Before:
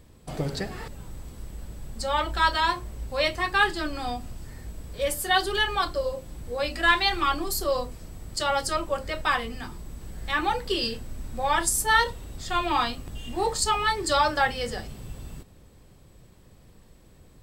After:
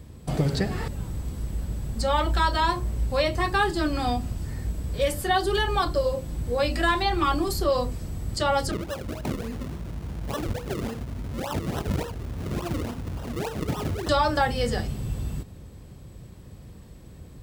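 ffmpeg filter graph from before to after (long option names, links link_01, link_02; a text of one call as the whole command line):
ffmpeg -i in.wav -filter_complex "[0:a]asettb=1/sr,asplit=3[link_01][link_02][link_03];[link_01]atrim=end=8.714[link_04];[link_02]atrim=start=8.71:end=14.09,asetpts=PTS-STARTPTS,afade=type=in:duration=0.004:curve=qsin,afade=type=out:start_time=5.376:duration=0.004:curve=qsin,highpass=58,acompressor=threshold=-38dB:ratio=2.5:attack=3.2:release=140:knee=1:detection=peak,acrusher=samples=38:mix=1:aa=0.000001:lfo=1:lforange=38:lforate=3.5[link_05];[link_03]atrim=start=14.086[link_06];[link_04][link_05]acrossfade=duration=0.004:curve1=hsin:curve2=qsin[link_07];[link_07][link_06]acrossfade=duration=0.004:curve1=qsin:curve2=hsin,highpass=52,lowshelf=frequency=250:gain=9.5,acrossover=split=1200|4300[link_08][link_09][link_10];[link_08]acompressor=threshold=-23dB:ratio=4[link_11];[link_09]acompressor=threshold=-36dB:ratio=4[link_12];[link_10]acompressor=threshold=-40dB:ratio=4[link_13];[link_11][link_12][link_13]amix=inputs=3:normalize=0,volume=3.5dB" out.wav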